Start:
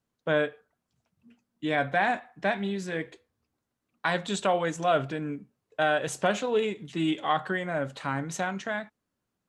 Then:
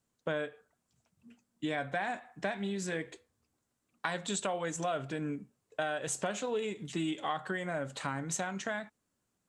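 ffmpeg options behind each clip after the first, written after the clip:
-af "equalizer=f=7.8k:t=o:w=0.71:g=9,acompressor=threshold=-32dB:ratio=4"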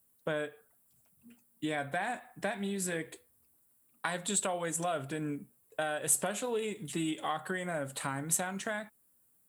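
-af "aexciter=amount=7.1:drive=8.6:freq=9.1k"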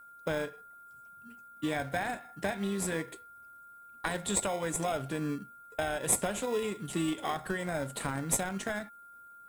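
-filter_complex "[0:a]asplit=2[a][b];[b]acrusher=samples=30:mix=1:aa=0.000001,volume=-8dB[c];[a][c]amix=inputs=2:normalize=0,aeval=exprs='val(0)+0.00316*sin(2*PI*1400*n/s)':c=same"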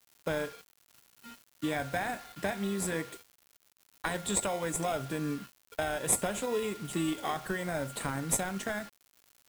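-af "acrusher=bits=7:mix=0:aa=0.000001"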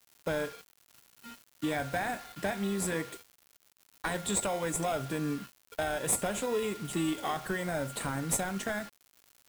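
-af "asoftclip=type=tanh:threshold=-22.5dB,volume=1.5dB"

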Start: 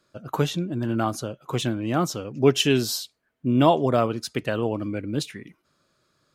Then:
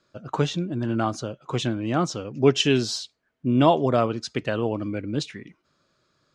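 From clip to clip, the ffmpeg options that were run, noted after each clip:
-af "lowpass=f=7.2k:w=0.5412,lowpass=f=7.2k:w=1.3066"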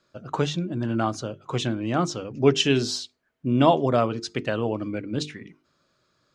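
-af "bandreject=f=50:t=h:w=6,bandreject=f=100:t=h:w=6,bandreject=f=150:t=h:w=6,bandreject=f=200:t=h:w=6,bandreject=f=250:t=h:w=6,bandreject=f=300:t=h:w=6,bandreject=f=350:t=h:w=6,bandreject=f=400:t=h:w=6,bandreject=f=450:t=h:w=6"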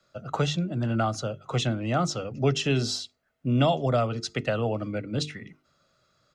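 -filter_complex "[0:a]aecho=1:1:1.5:0.47,acrossover=split=140|770|1700[a][b][c][d];[d]alimiter=limit=-19dB:level=0:latency=1:release=422[e];[a][b][c][e]amix=inputs=4:normalize=0,acrossover=split=180|3000[f][g][h];[g]acompressor=threshold=-23dB:ratio=3[i];[f][i][h]amix=inputs=3:normalize=0"

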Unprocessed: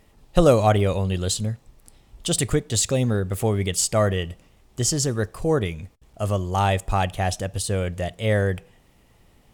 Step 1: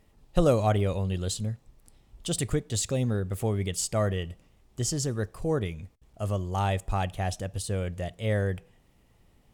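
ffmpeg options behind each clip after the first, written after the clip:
-af "lowshelf=f=360:g=3.5,volume=-8dB"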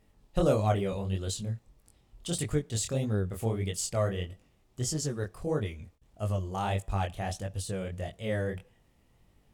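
-af "flanger=delay=19:depth=7.9:speed=1.6"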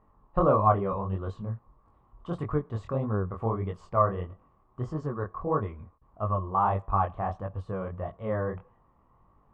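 -af "lowpass=f=1.1k:t=q:w=9.2"

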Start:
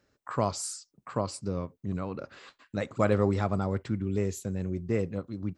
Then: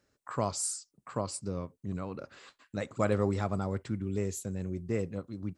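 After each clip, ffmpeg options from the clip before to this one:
-af "equalizer=f=9.1k:w=1.2:g=8,volume=-3.5dB"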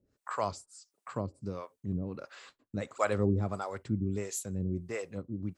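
-filter_complex "[0:a]acrossover=split=500[a][b];[a]aeval=exprs='val(0)*(1-1/2+1/2*cos(2*PI*1.5*n/s))':c=same[c];[b]aeval=exprs='val(0)*(1-1/2-1/2*cos(2*PI*1.5*n/s))':c=same[d];[c][d]amix=inputs=2:normalize=0,volume=4dB"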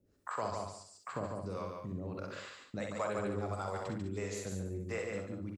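-filter_complex "[0:a]asplit=2[a][b];[b]aecho=0:1:143|286|429:0.531|0.0796|0.0119[c];[a][c]amix=inputs=2:normalize=0,acrossover=split=470|4900[d][e][f];[d]acompressor=threshold=-43dB:ratio=4[g];[e]acompressor=threshold=-39dB:ratio=4[h];[f]acompressor=threshold=-59dB:ratio=4[i];[g][h][i]amix=inputs=3:normalize=0,asplit=2[j][k];[k]aecho=0:1:44|63:0.335|0.562[l];[j][l]amix=inputs=2:normalize=0,volume=1dB"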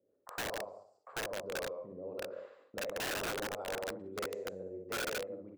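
-af "bandpass=f=520:t=q:w=3.4:csg=0,flanger=delay=9.6:depth=5.9:regen=-84:speed=0.76:shape=triangular,aeval=exprs='(mod(133*val(0)+1,2)-1)/133':c=same,volume=10.5dB"

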